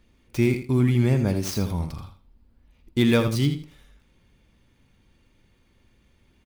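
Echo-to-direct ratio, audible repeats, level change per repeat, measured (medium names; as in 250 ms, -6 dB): -9.5 dB, 2, -14.0 dB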